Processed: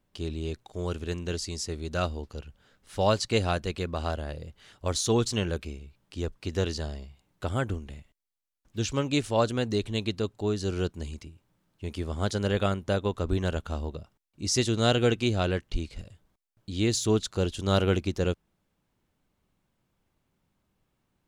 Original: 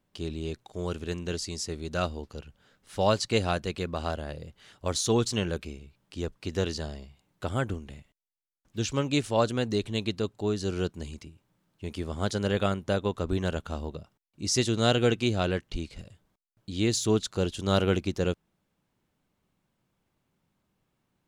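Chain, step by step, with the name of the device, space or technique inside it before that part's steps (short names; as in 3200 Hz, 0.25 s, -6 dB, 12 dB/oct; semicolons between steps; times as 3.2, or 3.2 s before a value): low shelf boost with a cut just above (low shelf 110 Hz +6.5 dB; bell 150 Hz -3 dB 1.1 oct)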